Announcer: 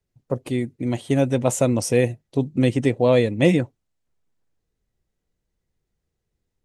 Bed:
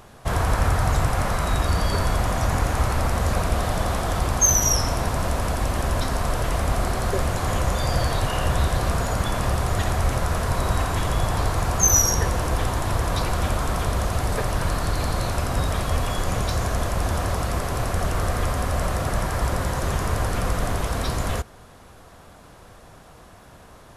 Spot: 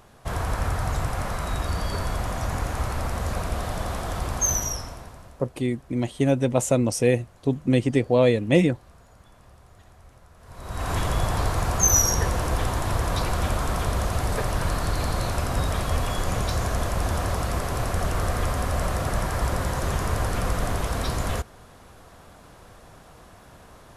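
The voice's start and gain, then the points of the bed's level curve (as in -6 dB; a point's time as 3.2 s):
5.10 s, -1.5 dB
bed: 4.55 s -5.5 dB
5.52 s -29 dB
10.36 s -29 dB
10.91 s -1.5 dB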